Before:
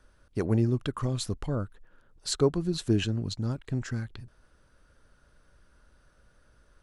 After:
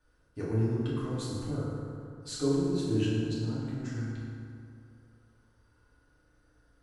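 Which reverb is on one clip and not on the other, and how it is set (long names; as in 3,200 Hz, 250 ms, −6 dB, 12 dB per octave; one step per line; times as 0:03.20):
feedback delay network reverb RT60 2.5 s, low-frequency decay 1×, high-frequency decay 0.5×, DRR −9.5 dB
level −14 dB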